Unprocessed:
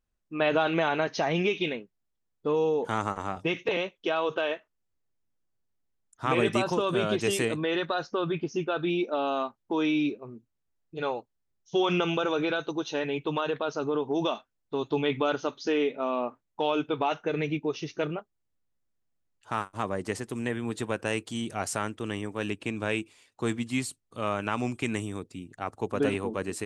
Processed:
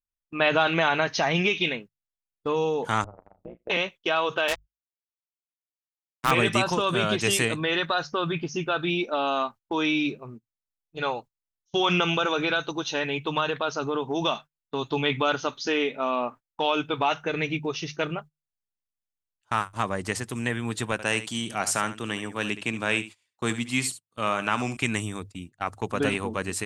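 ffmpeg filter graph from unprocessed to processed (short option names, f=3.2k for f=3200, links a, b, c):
-filter_complex "[0:a]asettb=1/sr,asplit=3[a][b][c];[a]atrim=end=3.044[d];[b]atrim=start=3.04:end=3.7,asetpts=PTS-STARTPTS,afade=t=in:d=0.004:c=qsin,afade=t=out:st=0.656:d=0.004:c=qsin,acompressor=threshold=-37dB:ratio=10:attack=3.2:release=140:knee=1:detection=peak,lowpass=f=560:t=q:w=2.8,tremolo=f=120:d=0.947[e];[c]atrim=start=3.696[f];[d][e]acrossfade=d=0.004:c1=hsin:c2=qsin[g];[g][f]acrossfade=d=0.004:c1=qsin:c2=hsin,asettb=1/sr,asplit=3[h][i][j];[h]atrim=end=4.484[k];[i]atrim=start=4.48:end=6.31,asetpts=PTS-STARTPTS,afade=t=in:d=0.004:c=qsin,afade=t=out:st=1.826:d=0.004:c=qsin,acrusher=bits=4:mix=0:aa=0.5,afreqshift=21[l];[j]atrim=start=6.306[m];[k][l]acrossfade=d=0.004:c1=hsin:c2=qsin[n];[n][m]acrossfade=d=0.004:c1=qsin:c2=hsin,asettb=1/sr,asplit=3[o][p][q];[o]atrim=end=20.924[r];[p]atrim=start=20.92:end=24.77,asetpts=PTS-STARTPTS,afade=t=in:d=0.004:c=qsin,afade=t=out:st=3.846:d=0.004:c=qsin,highpass=130,aecho=1:1:71:0.224,atrim=end_sample=169785[s];[q]atrim=start=24.766[t];[r][s]acrossfade=d=0.004:c1=hsin:c2=qsin[u];[u][t]acrossfade=d=0.004:c1=qsin:c2=hsin,bandreject=f=50:t=h:w=6,bandreject=f=100:t=h:w=6,bandreject=f=150:t=h:w=6,agate=range=-21dB:threshold=-43dB:ratio=16:detection=peak,equalizer=f=380:t=o:w=2.1:g=-8.5,volume=7.5dB"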